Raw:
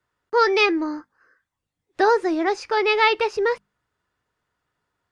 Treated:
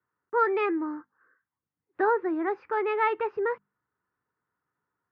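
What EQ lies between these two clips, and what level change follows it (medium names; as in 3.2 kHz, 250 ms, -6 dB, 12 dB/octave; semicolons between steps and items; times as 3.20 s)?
high-pass 120 Hz 12 dB/octave; four-pole ladder low-pass 2 kHz, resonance 20%; peaking EQ 640 Hz -8.5 dB 0.55 oct; 0.0 dB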